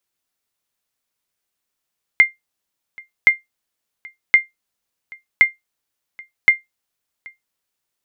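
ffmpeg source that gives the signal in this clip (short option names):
-f lavfi -i "aevalsrc='0.841*(sin(2*PI*2100*mod(t,1.07))*exp(-6.91*mod(t,1.07)/0.16)+0.0473*sin(2*PI*2100*max(mod(t,1.07)-0.78,0))*exp(-6.91*max(mod(t,1.07)-0.78,0)/0.16))':d=5.35:s=44100"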